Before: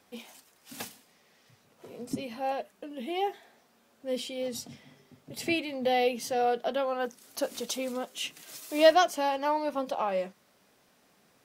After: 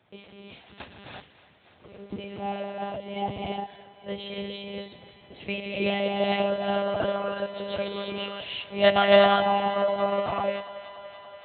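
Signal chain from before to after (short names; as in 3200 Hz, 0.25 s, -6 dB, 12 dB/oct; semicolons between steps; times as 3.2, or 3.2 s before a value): non-linear reverb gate 0.39 s rising, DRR -3 dB; monotone LPC vocoder at 8 kHz 200 Hz; HPF 74 Hz 24 dB/oct; thinning echo 0.287 s, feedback 78%, high-pass 240 Hz, level -17.5 dB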